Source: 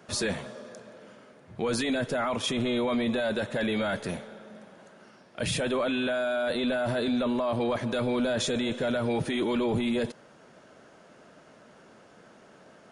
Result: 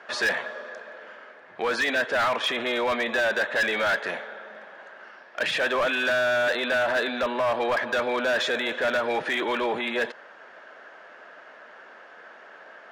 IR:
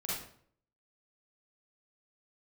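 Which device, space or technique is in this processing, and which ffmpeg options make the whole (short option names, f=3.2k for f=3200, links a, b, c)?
megaphone: -af "highpass=650,lowpass=2.9k,equalizer=f=1.7k:t=o:w=0.32:g=8,asoftclip=type=hard:threshold=-28.5dB,volume=9dB"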